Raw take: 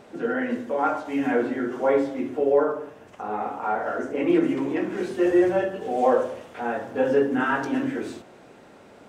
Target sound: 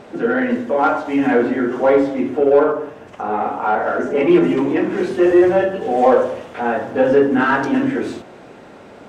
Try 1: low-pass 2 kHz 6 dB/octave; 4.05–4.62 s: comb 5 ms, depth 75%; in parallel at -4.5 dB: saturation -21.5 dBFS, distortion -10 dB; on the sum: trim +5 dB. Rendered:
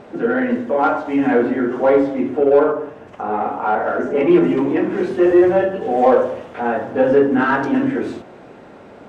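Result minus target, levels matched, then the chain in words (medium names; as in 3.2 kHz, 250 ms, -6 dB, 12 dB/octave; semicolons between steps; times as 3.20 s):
4 kHz band -3.5 dB
low-pass 4.9 kHz 6 dB/octave; 4.05–4.62 s: comb 5 ms, depth 75%; in parallel at -4.5 dB: saturation -21.5 dBFS, distortion -10 dB; on the sum: trim +5 dB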